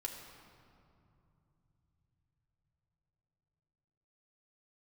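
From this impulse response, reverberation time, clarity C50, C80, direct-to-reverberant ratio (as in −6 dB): 2.8 s, 4.5 dB, 5.5 dB, −1.0 dB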